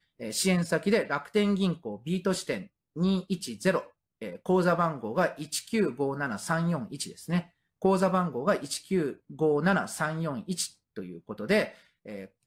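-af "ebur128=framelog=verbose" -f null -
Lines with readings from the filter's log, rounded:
Integrated loudness:
  I:         -28.8 LUFS
  Threshold: -39.3 LUFS
Loudness range:
  LRA:         1.9 LU
  Threshold: -49.2 LUFS
  LRA low:   -30.2 LUFS
  LRA high:  -28.3 LUFS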